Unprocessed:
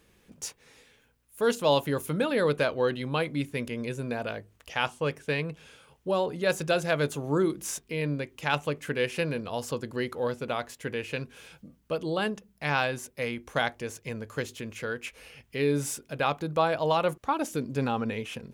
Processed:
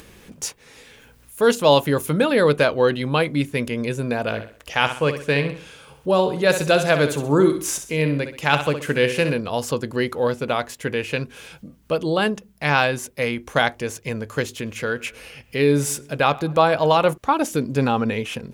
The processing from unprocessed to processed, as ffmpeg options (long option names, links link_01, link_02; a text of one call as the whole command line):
ffmpeg -i in.wav -filter_complex "[0:a]asettb=1/sr,asplit=3[link_01][link_02][link_03];[link_01]atrim=end=4.214[link_04];[link_02]atrim=start=4.21:end=9.34,asetpts=PTS-STARTPTS,afade=type=in:duration=0.004:curve=qsin,afade=type=out:start_time=5.126:duration=0.004:curve=qsin,aecho=1:1:64|128|192|256:0.335|0.127|0.0484|0.0184,atrim=end_sample=226233[link_05];[link_03]atrim=start=9.336[link_06];[link_04][link_05]acrossfade=duration=0.004:curve1=hsin:curve2=qsin[link_07];[link_07][link_06]acrossfade=duration=0.004:curve1=qsin:curve2=hsin,asettb=1/sr,asplit=3[link_08][link_09][link_10];[link_08]atrim=end=14.484[link_11];[link_09]atrim=start=14.48:end=17.13,asetpts=PTS-STARTPTS,afade=type=in:duration=0.004:curve=qsin,afade=type=out:start_time=2.646:duration=0.004:curve=qsin,asplit=2[link_12][link_13];[link_13]adelay=105,lowpass=frequency=3000:poles=1,volume=-21dB,asplit=2[link_14][link_15];[link_15]adelay=105,lowpass=frequency=3000:poles=1,volume=0.55,asplit=2[link_16][link_17];[link_17]adelay=105,lowpass=frequency=3000:poles=1,volume=0.55,asplit=2[link_18][link_19];[link_19]adelay=105,lowpass=frequency=3000:poles=1,volume=0.55[link_20];[link_12][link_14][link_16][link_18][link_20]amix=inputs=5:normalize=0,atrim=end_sample=116865[link_21];[link_10]atrim=start=17.126[link_22];[link_11][link_21]acrossfade=duration=0.004:curve1=hsin:curve2=qsin[link_23];[link_23][link_22]acrossfade=duration=0.004:curve1=qsin:curve2=hsin,acompressor=mode=upward:threshold=-47dB:ratio=2.5,volume=8.5dB" out.wav